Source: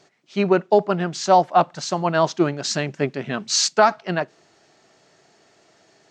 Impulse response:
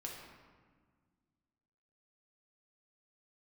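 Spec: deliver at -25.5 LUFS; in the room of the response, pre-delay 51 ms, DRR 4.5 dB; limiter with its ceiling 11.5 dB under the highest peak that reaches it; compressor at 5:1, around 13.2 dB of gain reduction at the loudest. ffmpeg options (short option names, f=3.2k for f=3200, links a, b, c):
-filter_complex "[0:a]acompressor=threshold=-25dB:ratio=5,alimiter=limit=-24dB:level=0:latency=1,asplit=2[a][b];[1:a]atrim=start_sample=2205,adelay=51[c];[b][c]afir=irnorm=-1:irlink=0,volume=-3dB[d];[a][d]amix=inputs=2:normalize=0,volume=8dB"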